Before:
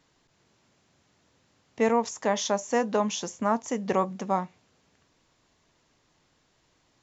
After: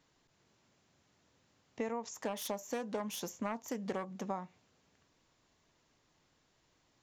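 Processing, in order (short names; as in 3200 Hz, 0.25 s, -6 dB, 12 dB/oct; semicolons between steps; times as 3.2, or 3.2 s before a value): 2.14–4.24 self-modulated delay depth 0.16 ms; compressor 12:1, threshold -28 dBFS, peak gain reduction 10.5 dB; gain -5.5 dB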